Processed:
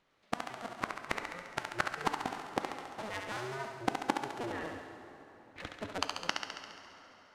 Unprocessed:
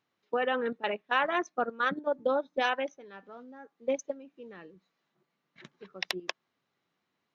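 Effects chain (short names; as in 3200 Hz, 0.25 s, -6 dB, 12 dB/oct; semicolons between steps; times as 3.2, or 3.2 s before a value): cycle switcher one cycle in 2, inverted; LPF 7900 Hz 12 dB/oct; bell 5500 Hz -2.5 dB 1.4 oct; flipped gate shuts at -23 dBFS, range -28 dB; thinning echo 69 ms, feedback 67%, high-pass 420 Hz, level -5 dB; plate-style reverb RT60 4 s, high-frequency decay 0.65×, DRR 8.5 dB; gain +7 dB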